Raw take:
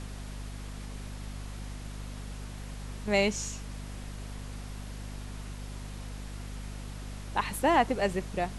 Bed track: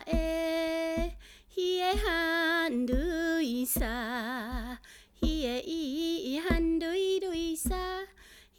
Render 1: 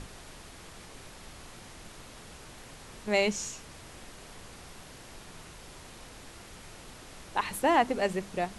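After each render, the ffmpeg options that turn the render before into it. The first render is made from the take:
-af "bandreject=f=50:t=h:w=6,bandreject=f=100:t=h:w=6,bandreject=f=150:t=h:w=6,bandreject=f=200:t=h:w=6,bandreject=f=250:t=h:w=6,bandreject=f=300:t=h:w=6"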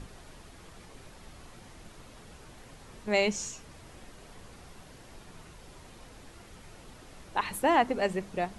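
-af "afftdn=nr=6:nf=-49"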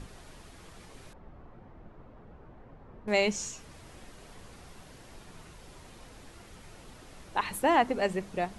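-filter_complex "[0:a]asettb=1/sr,asplit=3[a][b][c];[a]atrim=end=1.134[d];[b]atrim=start=1.13:end=3.08,asetpts=PTS-STARTPTS,afade=t=in:d=0.004:c=qsin,afade=t=out:st=1.946:d=0.004:c=qsin,lowpass=1.1k[e];[c]atrim=start=3.076[f];[d][e]acrossfade=d=0.004:c1=hsin:c2=qsin[g];[g][f]acrossfade=d=0.004:c1=qsin:c2=hsin"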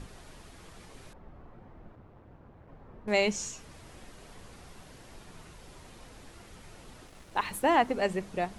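-filter_complex "[0:a]asplit=3[a][b][c];[a]afade=t=out:st=1.95:d=0.02[d];[b]aeval=exprs='val(0)*sin(2*PI*98*n/s)':c=same,afade=t=in:st=1.95:d=0.02,afade=t=out:st=2.66:d=0.02[e];[c]afade=t=in:st=2.66:d=0.02[f];[d][e][f]amix=inputs=3:normalize=0,asettb=1/sr,asplit=3[g][h][i];[g]atrim=end=7.074[j];[h]atrim=start=7.07:end=7.98,asetpts=PTS-STARTPTS,afade=t=in:d=0.004:c=qsin,afade=t=out:st=0.906:d=0.004:c=qsin,aeval=exprs='sgn(val(0))*max(abs(val(0))-0.00141,0)':c=same[k];[i]atrim=start=7.976[l];[j][k]acrossfade=d=0.004:c1=hsin:c2=qsin[m];[m][l]acrossfade=d=0.004:c1=qsin:c2=hsin"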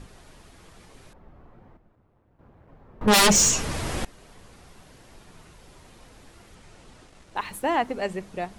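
-filter_complex "[0:a]asettb=1/sr,asplit=3[a][b][c];[a]atrim=end=3.014[d];[b]atrim=start=3.01:end=4.05,asetpts=PTS-STARTPTS,afade=t=in:d=0.004:c=qsin,afade=t=out:st=1.036:d=0.004:c=qsin,aeval=exprs='0.224*sin(PI/2*7.08*val(0)/0.224)':c=same[e];[c]atrim=start=4.046[f];[d][e]acrossfade=d=0.004:c1=hsin:c2=qsin[g];[g][f]acrossfade=d=0.004:c1=qsin:c2=hsin,asettb=1/sr,asplit=3[h][i][j];[h]atrim=end=6.554[k];[i]atrim=start=6.55:end=7.36,asetpts=PTS-STARTPTS,afade=t=in:d=0.004:c=qsin,afade=t=out:st=0.806:d=0.004:c=qsin,lowpass=f=10k:w=0.5412,lowpass=f=10k:w=1.3066[l];[j]atrim=start=7.356[m];[k][l]acrossfade=d=0.004:c1=hsin:c2=qsin[n];[n][m]acrossfade=d=0.004:c1=qsin:c2=hsin,asplit=3[o][p][q];[o]atrim=end=1.772[r];[p]atrim=start=1.768:end=2.392,asetpts=PTS-STARTPTS,volume=-10dB[s];[q]atrim=start=2.388[t];[r][s]acrossfade=d=0.004:c1=hsin:c2=hsin[u];[u][t]acrossfade=d=0.004:c1=hsin:c2=hsin"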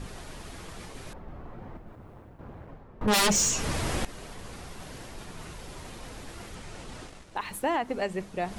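-af "alimiter=limit=-19dB:level=0:latency=1:release=136,areverse,acompressor=mode=upward:threshold=-32dB:ratio=2.5,areverse"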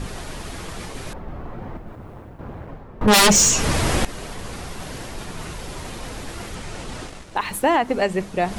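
-af "volume=9.5dB"

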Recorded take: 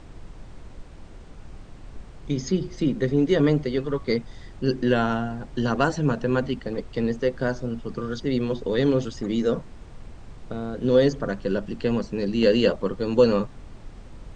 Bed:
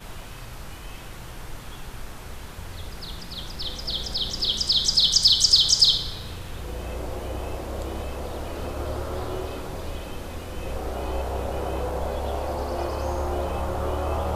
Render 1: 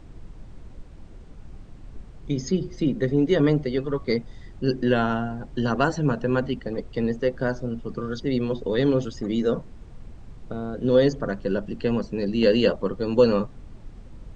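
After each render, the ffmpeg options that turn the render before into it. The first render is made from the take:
-af "afftdn=nr=6:nf=-44"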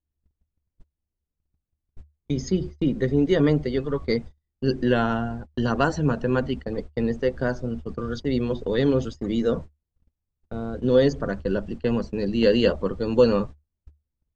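-af "agate=range=-44dB:threshold=-32dB:ratio=16:detection=peak,equalizer=f=74:t=o:w=0.32:g=13.5"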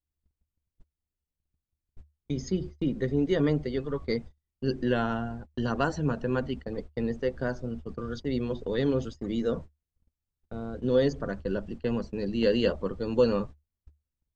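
-af "volume=-5.5dB"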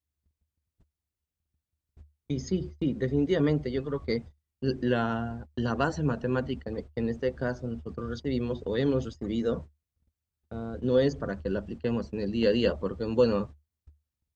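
-af "highpass=49,equalizer=f=83:w=2.5:g=4.5"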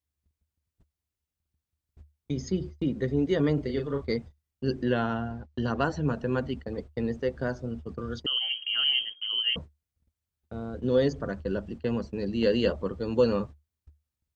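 -filter_complex "[0:a]asettb=1/sr,asplit=3[a][b][c];[a]atrim=end=3.544[d];[b]atrim=start=3.54:end=4.02,asetpts=PTS-STARTPTS,afade=t=in:d=0.004:c=qsin,afade=t=out:st=0.476:d=0.004:c=qsin,asplit=2[e][f];[f]adelay=36,volume=-6dB[g];[e][g]amix=inputs=2:normalize=0,atrim=end_sample=21168[h];[c]atrim=start=4.016[i];[d][h]acrossfade=d=0.004:c1=hsin:c2=qsin[j];[j][i]acrossfade=d=0.004:c1=qsin:c2=hsin,asettb=1/sr,asplit=3[k][l][m];[k]atrim=end=4.834[n];[l]atrim=start=4.83:end=6.08,asetpts=PTS-STARTPTS,afade=t=in:d=0.004:c=qsin,afade=t=out:st=1.246:d=0.004:c=qsin,lowpass=5.9k[o];[m]atrim=start=6.076[p];[n][o]acrossfade=d=0.004:c1=hsin:c2=qsin[q];[q][p]acrossfade=d=0.004:c1=qsin:c2=hsin,asettb=1/sr,asplit=3[r][s][t];[r]atrim=end=8.264[u];[s]atrim=start=8.26:end=9.56,asetpts=PTS-STARTPTS,afade=t=in:d=0.004:c=qsin,afade=t=out:st=1.296:d=0.004:c=qsin,lowpass=f=2.8k:t=q:w=0.5098,lowpass=f=2.8k:t=q:w=0.6013,lowpass=f=2.8k:t=q:w=0.9,lowpass=f=2.8k:t=q:w=2.563,afreqshift=-3300[v];[t]atrim=start=9.556[w];[u][v]acrossfade=d=0.004:c1=hsin:c2=qsin[x];[x][w]acrossfade=d=0.004:c1=qsin:c2=hsin"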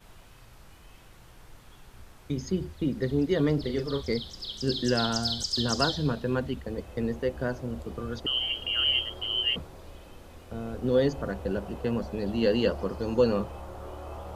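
-filter_complex "[1:a]volume=-13.5dB[a];[0:a][a]amix=inputs=2:normalize=0"

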